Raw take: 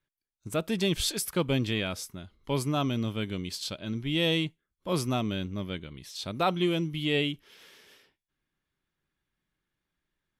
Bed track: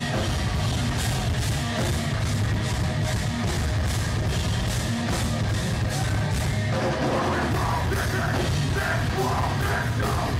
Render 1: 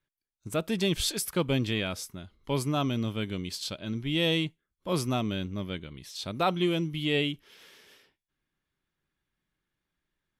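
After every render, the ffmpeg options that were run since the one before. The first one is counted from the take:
-af anull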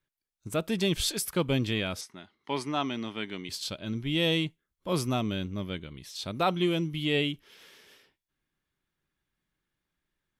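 -filter_complex "[0:a]asettb=1/sr,asplit=3[s0][s1][s2];[s0]atrim=end=2.014[s3];[s1]atrim=start=2.01:end=3.49,asetpts=PTS-STARTPTS,afade=t=in:d=0.004:c=qsin,afade=t=out:st=1.476:d=0.004:c=qsin,highpass=260,equalizer=f=520:t=q:w=4:g=-7,equalizer=f=860:t=q:w=4:g=5,equalizer=f=1900:t=q:w=4:g=7,equalizer=f=7400:t=q:w=4:g=-8,lowpass=f=8600:w=0.5412,lowpass=f=8600:w=1.3066[s4];[s2]atrim=start=3.486[s5];[s3][s4]acrossfade=d=0.004:c1=hsin:c2=qsin[s6];[s6][s5]acrossfade=d=0.004:c1=qsin:c2=hsin"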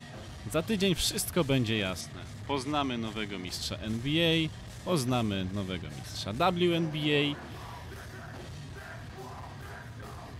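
-filter_complex "[1:a]volume=0.112[s0];[0:a][s0]amix=inputs=2:normalize=0"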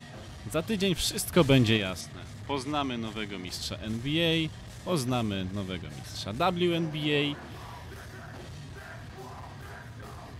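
-filter_complex "[0:a]asplit=3[s0][s1][s2];[s0]afade=t=out:st=1.32:d=0.02[s3];[s1]acontrast=51,afade=t=in:st=1.32:d=0.02,afade=t=out:st=1.76:d=0.02[s4];[s2]afade=t=in:st=1.76:d=0.02[s5];[s3][s4][s5]amix=inputs=3:normalize=0"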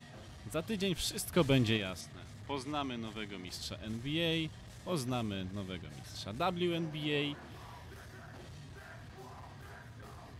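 -af "volume=0.447"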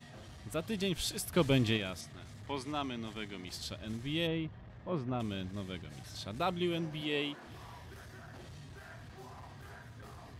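-filter_complex "[0:a]asplit=3[s0][s1][s2];[s0]afade=t=out:st=4.26:d=0.02[s3];[s1]lowpass=1800,afade=t=in:st=4.26:d=0.02,afade=t=out:st=5.19:d=0.02[s4];[s2]afade=t=in:st=5.19:d=0.02[s5];[s3][s4][s5]amix=inputs=3:normalize=0,asettb=1/sr,asplit=3[s6][s7][s8];[s6]atrim=end=7.014[s9];[s7]atrim=start=7.01:end=7.47,asetpts=PTS-STARTPTS,afade=t=in:d=0.004:c=qsin,afade=t=out:st=0.456:d=0.004:c=qsin,highpass=200[s10];[s8]atrim=start=7.466[s11];[s9][s10]acrossfade=d=0.004:c1=hsin:c2=qsin[s12];[s12][s11]acrossfade=d=0.004:c1=qsin:c2=hsin"

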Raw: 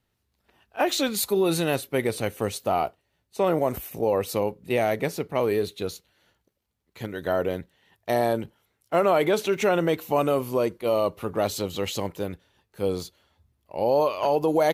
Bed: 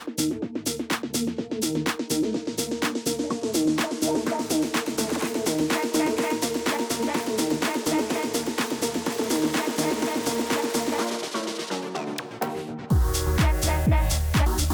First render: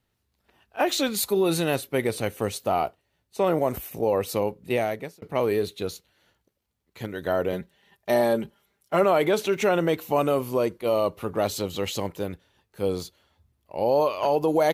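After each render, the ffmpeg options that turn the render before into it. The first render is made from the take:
-filter_complex "[0:a]asettb=1/sr,asplit=3[s0][s1][s2];[s0]atrim=end=7.524[s3];[s1]atrim=start=7.52:end=9.04,asetpts=PTS-STARTPTS,afade=t=in:d=0.004:c=qsin,afade=t=out:st=1.516:d=0.004:c=qsin,aecho=1:1:5:0.58,atrim=end_sample=67032[s4];[s2]atrim=start=9.036[s5];[s3][s4]acrossfade=d=0.004:c1=hsin:c2=qsin[s6];[s6][s5]acrossfade=d=0.004:c1=qsin:c2=hsin,asplit=2[s7][s8];[s7]atrim=end=5.22,asetpts=PTS-STARTPTS,afade=t=out:st=4.72:d=0.5[s9];[s8]atrim=start=5.22,asetpts=PTS-STARTPTS,afade=t=in:d=0.004:c=hsin[s10];[s9][s10]concat=n=2:v=0:a=1"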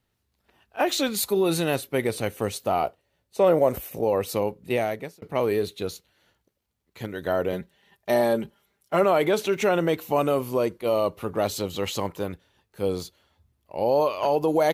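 -filter_complex "[0:a]asettb=1/sr,asplit=3[s0][s1][s2];[s0]atrim=end=2.834[s3];[s1]atrim=start=2.83:end=4.01,asetpts=PTS-STARTPTS,afade=t=in:d=0.004:c=qsin,afade=t=out:st=1.176:d=0.004:c=qsin,equalizer=f=530:w=3.4:g=7[s4];[s2]atrim=start=4.006[s5];[s3][s4]acrossfade=d=0.004:c1=hsin:c2=qsin[s6];[s6][s5]acrossfade=d=0.004:c1=qsin:c2=hsin,asettb=1/sr,asplit=3[s7][s8][s9];[s7]atrim=end=11.824[s10];[s8]atrim=start=11.82:end=12.32,asetpts=PTS-STARTPTS,afade=t=in:d=0.004:c=qsin,afade=t=out:st=0.496:d=0.004:c=qsin,equalizer=f=1100:t=o:w=0.77:g=5.5[s11];[s9]atrim=start=12.316[s12];[s10][s11]acrossfade=d=0.004:c1=hsin:c2=qsin[s13];[s13][s12]acrossfade=d=0.004:c1=qsin:c2=hsin"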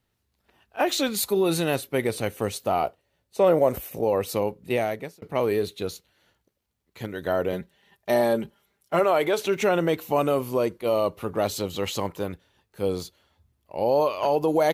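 -filter_complex "[0:a]asettb=1/sr,asplit=3[s0][s1][s2];[s0]atrim=end=8.994[s3];[s1]atrim=start=8.99:end=9.44,asetpts=PTS-STARTPTS,afade=t=in:d=0.004:c=qsin,afade=t=out:st=0.446:d=0.004:c=qsin,equalizer=f=200:w=1.5:g=-9[s4];[s2]atrim=start=9.436[s5];[s3][s4]acrossfade=d=0.004:c1=hsin:c2=qsin[s6];[s6][s5]acrossfade=d=0.004:c1=qsin:c2=hsin"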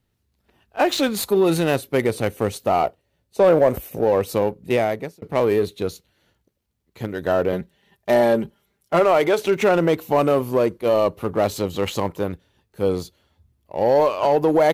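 -filter_complex "[0:a]asplit=2[s0][s1];[s1]adynamicsmooth=sensitivity=5.5:basefreq=570,volume=0.944[s2];[s0][s2]amix=inputs=2:normalize=0,asoftclip=type=tanh:threshold=0.501"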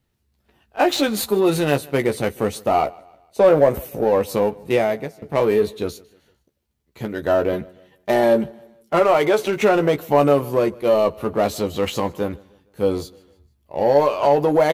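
-filter_complex "[0:a]asplit=2[s0][s1];[s1]adelay=14,volume=0.473[s2];[s0][s2]amix=inputs=2:normalize=0,aecho=1:1:153|306|459:0.0631|0.0271|0.0117"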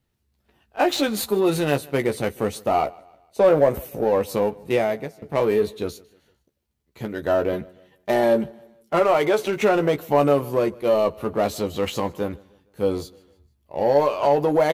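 -af "volume=0.75"

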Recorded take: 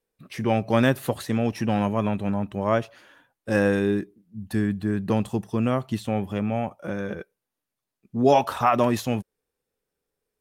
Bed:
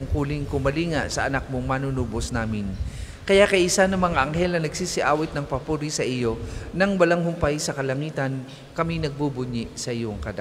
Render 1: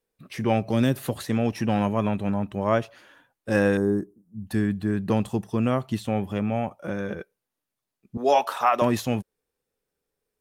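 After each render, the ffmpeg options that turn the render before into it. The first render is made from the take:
-filter_complex "[0:a]asettb=1/sr,asplit=3[s0][s1][s2];[s0]atrim=end=0.684[s3];[s1]atrim=start=0.68:end=1.27,asetpts=PTS-STARTPTS,afade=t=in:d=0.004:c=qsin,afade=t=out:st=0.586:d=0.004:c=qsin,acrossover=split=460|3000[s4][s5][s6];[s5]acompressor=threshold=0.0251:ratio=6:attack=3.2:release=140:knee=2.83:detection=peak[s7];[s4][s7][s6]amix=inputs=3:normalize=0[s8];[s2]atrim=start=1.266[s9];[s3][s8]acrossfade=d=0.004:c1=hsin:c2=qsin[s10];[s10][s9]acrossfade=d=0.004:c1=qsin:c2=hsin,asettb=1/sr,asplit=3[s11][s12][s13];[s11]atrim=end=3.774[s14];[s12]atrim=start=3.77:end=4.47,asetpts=PTS-STARTPTS,afade=t=in:d=0.004:c=qsin,afade=t=out:st=0.696:d=0.004:c=qsin,asuperstop=centerf=2900:order=4:qfactor=0.56[s15];[s13]atrim=start=4.466[s16];[s14][s15]acrossfade=d=0.004:c1=hsin:c2=qsin[s17];[s17][s16]acrossfade=d=0.004:c1=qsin:c2=hsin,asettb=1/sr,asplit=3[s18][s19][s20];[s18]atrim=end=8.174[s21];[s19]atrim=start=8.17:end=8.82,asetpts=PTS-STARTPTS,afade=t=in:d=0.004:c=qsin,afade=t=out:st=0.646:d=0.004:c=qsin,highpass=470[s22];[s20]atrim=start=8.816[s23];[s21][s22]acrossfade=d=0.004:c1=hsin:c2=qsin[s24];[s24][s23]acrossfade=d=0.004:c1=qsin:c2=hsin"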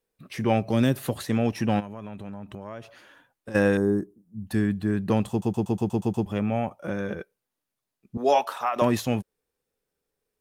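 -filter_complex "[0:a]asplit=3[s0][s1][s2];[s0]afade=t=out:st=1.79:d=0.02[s3];[s1]acompressor=threshold=0.0224:ratio=10:attack=3.2:release=140:knee=1:detection=peak,afade=t=in:st=1.79:d=0.02,afade=t=out:st=3.54:d=0.02[s4];[s2]afade=t=in:st=3.54:d=0.02[s5];[s3][s4][s5]amix=inputs=3:normalize=0,asplit=10[s6][s7][s8][s9][s10][s11][s12][s13][s14][s15];[s6]atrim=end=5.422[s16];[s7]atrim=start=5.298:end=5.422[s17];[s8]atrim=start=5.298:end=5.422[s18];[s9]atrim=start=5.298:end=5.422[s19];[s10]atrim=start=5.298:end=5.422[s20];[s11]atrim=start=5.298:end=5.422[s21];[s12]atrim=start=5.298:end=5.422[s22];[s13]atrim=start=5.298:end=5.422[s23];[s14]atrim=start=6.258:end=8.76,asetpts=PTS-STARTPTS,afade=t=out:st=1.992:d=0.51:silence=0.398107[s24];[s15]atrim=start=8.76,asetpts=PTS-STARTPTS,afade=t=in:d=0.004:c=hsin:silence=0.398107[s25];[s16][s17]acrossfade=d=0.004:c1=hsin:c2=hsin[s26];[s26][s18]acrossfade=d=0.004:c1=hsin:c2=hsin[s27];[s27][s19]acrossfade=d=0.004:c1=hsin:c2=hsin[s28];[s28][s20]acrossfade=d=0.004:c1=hsin:c2=hsin[s29];[s29][s21]acrossfade=d=0.004:c1=hsin:c2=hsin[s30];[s30][s22]acrossfade=d=0.004:c1=hsin:c2=hsin[s31];[s31][s23]acrossfade=d=0.004:c1=hsin:c2=hsin[s32];[s24][s25]concat=n=2:v=0:a=1[s33];[s32][s33]acrossfade=d=0.004:c1=hsin:c2=hsin"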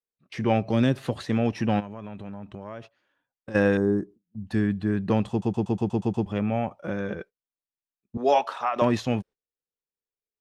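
-af "lowpass=5300,agate=range=0.1:threshold=0.00708:ratio=16:detection=peak"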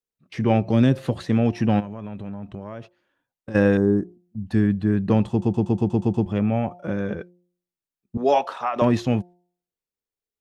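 -af "lowshelf=f=430:g=6,bandreject=f=176.9:t=h:w=4,bandreject=f=353.8:t=h:w=4,bandreject=f=530.7:t=h:w=4,bandreject=f=707.6:t=h:w=4,bandreject=f=884.5:t=h:w=4"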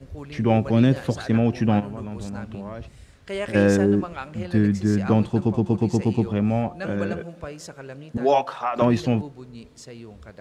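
-filter_complex "[1:a]volume=0.224[s0];[0:a][s0]amix=inputs=2:normalize=0"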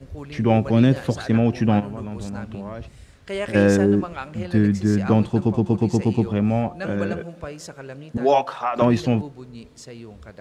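-af "volume=1.19"

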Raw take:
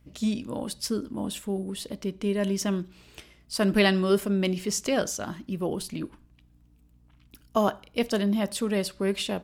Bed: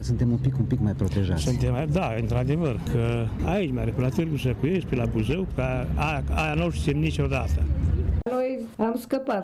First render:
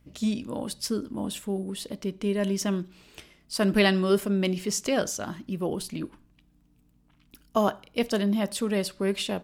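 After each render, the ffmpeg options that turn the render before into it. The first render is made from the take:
-af "bandreject=f=60:t=h:w=4,bandreject=f=120:t=h:w=4"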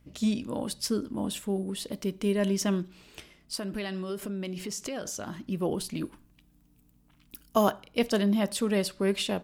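-filter_complex "[0:a]asettb=1/sr,asplit=3[s0][s1][s2];[s0]atrim=end=1.924[s3];[s1]atrim=start=1.92:end=2.33,asetpts=PTS-STARTPTS,afade=t=in:d=0.004:c=qsin,afade=t=out:st=0.406:d=0.004:c=qsin,highshelf=f=9500:g=11[s4];[s2]atrim=start=2.326[s5];[s3][s4]acrossfade=d=0.004:c1=hsin:c2=qsin[s6];[s6][s5]acrossfade=d=0.004:c1=qsin:c2=hsin,asettb=1/sr,asplit=3[s7][s8][s9];[s7]atrim=end=3.554[s10];[s8]atrim=start=3.55:end=5.34,asetpts=PTS-STARTPTS,afade=t=in:d=0.004:c=qsin,afade=t=out:st=1.786:d=0.004:c=qsin,acompressor=threshold=0.0251:ratio=5:attack=3.2:release=140:knee=1:detection=peak[s11];[s9]atrim=start=5.336[s12];[s10][s11]acrossfade=d=0.004:c1=hsin:c2=qsin[s13];[s13][s12]acrossfade=d=0.004:c1=qsin:c2=hsin,asettb=1/sr,asplit=3[s14][s15][s16];[s14]atrim=end=5.964[s17];[s15]atrim=start=5.96:end=7.72,asetpts=PTS-STARTPTS,afade=t=in:d=0.004:c=qsin,afade=t=out:st=1.756:d=0.004:c=qsin,highshelf=f=8300:g=11[s18];[s16]atrim=start=7.716[s19];[s17][s18]acrossfade=d=0.004:c1=hsin:c2=qsin[s20];[s20][s19]acrossfade=d=0.004:c1=qsin:c2=hsin"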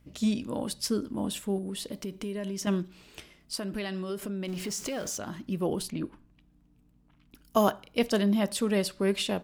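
-filter_complex "[0:a]asettb=1/sr,asplit=3[s0][s1][s2];[s0]atrim=end=1.584[s3];[s1]atrim=start=1.58:end=2.67,asetpts=PTS-STARTPTS,afade=t=in:d=0.004:c=qsin,afade=t=out:st=1.086:d=0.004:c=qsin,acompressor=threshold=0.0282:ratio=6:attack=3.2:release=140:knee=1:detection=peak[s4];[s2]atrim=start=2.666[s5];[s3][s4]acrossfade=d=0.004:c1=hsin:c2=qsin[s6];[s6][s5]acrossfade=d=0.004:c1=qsin:c2=hsin,asettb=1/sr,asplit=3[s7][s8][s9];[s7]atrim=end=4.484[s10];[s8]atrim=start=4.48:end=5.18,asetpts=PTS-STARTPTS,afade=t=in:d=0.004:c=qsin,afade=t=out:st=0.696:d=0.004:c=qsin,aeval=exprs='val(0)+0.5*0.00891*sgn(val(0))':c=same[s11];[s9]atrim=start=5.176[s12];[s10][s11]acrossfade=d=0.004:c1=hsin:c2=qsin[s13];[s13][s12]acrossfade=d=0.004:c1=qsin:c2=hsin,asettb=1/sr,asplit=3[s14][s15][s16];[s14]atrim=end=5.904[s17];[s15]atrim=start=5.9:end=7.45,asetpts=PTS-STARTPTS,afade=t=in:d=0.004:c=qsin,afade=t=out:st=1.546:d=0.004:c=qsin,aemphasis=mode=reproduction:type=75kf[s18];[s16]atrim=start=7.446[s19];[s17][s18]acrossfade=d=0.004:c1=hsin:c2=qsin[s20];[s20][s19]acrossfade=d=0.004:c1=qsin:c2=hsin"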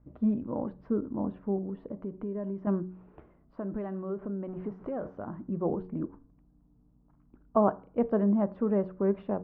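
-af "lowpass=f=1200:w=0.5412,lowpass=f=1200:w=1.3066,bandreject=f=92.12:t=h:w=4,bandreject=f=184.24:t=h:w=4,bandreject=f=276.36:t=h:w=4,bandreject=f=368.48:t=h:w=4,bandreject=f=460.6:t=h:w=4"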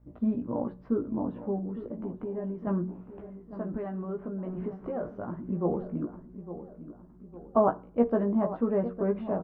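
-filter_complex "[0:a]asplit=2[s0][s1];[s1]adelay=17,volume=0.631[s2];[s0][s2]amix=inputs=2:normalize=0,asplit=2[s3][s4];[s4]adelay=857,lowpass=f=1600:p=1,volume=0.251,asplit=2[s5][s6];[s6]adelay=857,lowpass=f=1600:p=1,volume=0.49,asplit=2[s7][s8];[s8]adelay=857,lowpass=f=1600:p=1,volume=0.49,asplit=2[s9][s10];[s10]adelay=857,lowpass=f=1600:p=1,volume=0.49,asplit=2[s11][s12];[s12]adelay=857,lowpass=f=1600:p=1,volume=0.49[s13];[s3][s5][s7][s9][s11][s13]amix=inputs=6:normalize=0"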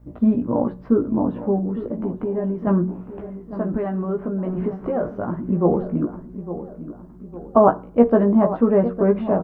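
-af "volume=3.35,alimiter=limit=0.708:level=0:latency=1"

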